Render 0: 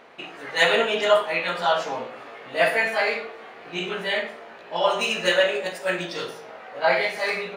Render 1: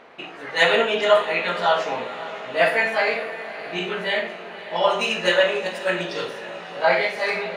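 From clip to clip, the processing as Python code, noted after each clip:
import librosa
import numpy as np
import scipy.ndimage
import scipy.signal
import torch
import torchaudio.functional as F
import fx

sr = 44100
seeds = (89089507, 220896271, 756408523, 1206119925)

y = fx.high_shelf(x, sr, hz=7400.0, db=-9.0)
y = fx.echo_diffused(y, sr, ms=563, feedback_pct=59, wet_db=-14.0)
y = y * 10.0 ** (2.0 / 20.0)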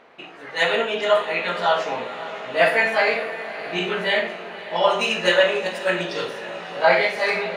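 y = fx.rider(x, sr, range_db=4, speed_s=2.0)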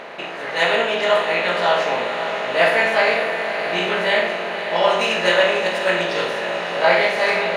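y = fx.bin_compress(x, sr, power=0.6)
y = y * 10.0 ** (-1.5 / 20.0)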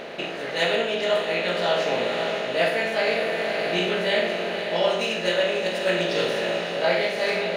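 y = fx.graphic_eq_10(x, sr, hz=(1000, 2000, 8000), db=(-11, -5, -3))
y = fx.rider(y, sr, range_db=4, speed_s=0.5)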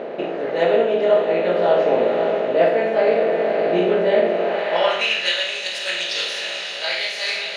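y = fx.filter_sweep_bandpass(x, sr, from_hz=430.0, to_hz=5100.0, start_s=4.32, end_s=5.46, q=0.92)
y = y * 10.0 ** (9.0 / 20.0)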